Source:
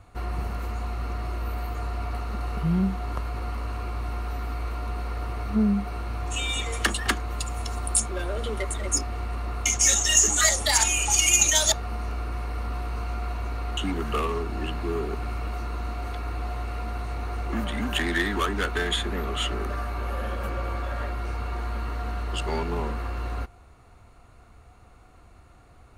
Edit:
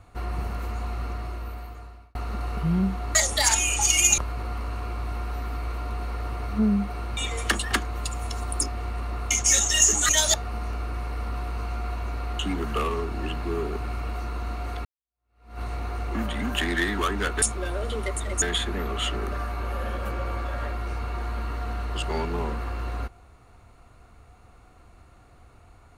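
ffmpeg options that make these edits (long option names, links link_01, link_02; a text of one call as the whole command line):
ffmpeg -i in.wav -filter_complex "[0:a]asplit=10[link_01][link_02][link_03][link_04][link_05][link_06][link_07][link_08][link_09][link_10];[link_01]atrim=end=2.15,asetpts=PTS-STARTPTS,afade=type=out:start_time=0.99:duration=1.16[link_11];[link_02]atrim=start=2.15:end=3.152,asetpts=PTS-STARTPTS,afade=type=in:duration=0.004:curve=hsin[link_12];[link_03]atrim=start=10.438:end=11.472[link_13];[link_04]atrim=start=3.148:end=6.142[link_14];[link_05]atrim=start=6.518:end=7.962[link_15];[link_06]atrim=start=8.958:end=10.442[link_16];[link_07]atrim=start=11.468:end=16.23,asetpts=PTS-STARTPTS,afade=type=out:start_time=4.758:duration=0.004:curve=hsin[link_17];[link_08]atrim=start=16.23:end=18.802,asetpts=PTS-STARTPTS,afade=type=in:duration=0.76:curve=exp[link_18];[link_09]atrim=start=7.958:end=8.962[link_19];[link_10]atrim=start=18.798[link_20];[link_11][link_12]concat=n=2:v=0:a=1[link_21];[link_21][link_13]acrossfade=duration=0.004:curve1=hsin:curve2=hsin[link_22];[link_22][link_14]acrossfade=duration=0.004:curve1=hsin:curve2=hsin[link_23];[link_23][link_15]acrossfade=duration=0.004:curve1=hsin:curve2=hsin[link_24];[link_24][link_16]acrossfade=duration=0.004:curve1=hsin:curve2=hsin[link_25];[link_17][link_18]concat=n=2:v=0:a=1[link_26];[link_25][link_26]acrossfade=duration=0.004:curve1=hsin:curve2=hsin[link_27];[link_27][link_19]acrossfade=duration=0.004:curve1=hsin:curve2=hsin[link_28];[link_28][link_20]acrossfade=duration=0.004:curve1=hsin:curve2=hsin" out.wav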